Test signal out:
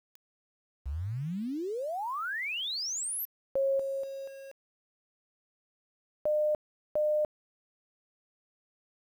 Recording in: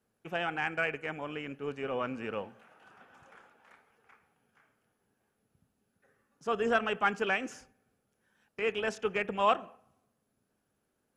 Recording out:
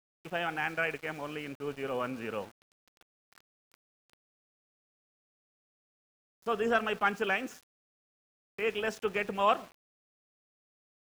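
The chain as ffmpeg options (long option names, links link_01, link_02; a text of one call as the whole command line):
ffmpeg -i in.wav -af "aeval=exprs='val(0)*gte(abs(val(0)),0.00422)':channel_layout=same" out.wav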